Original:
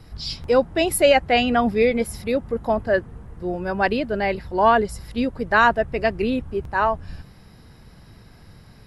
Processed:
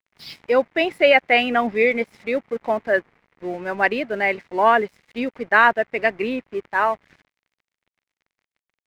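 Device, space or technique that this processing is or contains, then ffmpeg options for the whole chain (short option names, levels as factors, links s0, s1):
pocket radio on a weak battery: -af "highpass=250,lowpass=3300,aeval=exprs='sgn(val(0))*max(abs(val(0))-0.00501,0)':c=same,equalizer=f=2100:t=o:w=0.59:g=9"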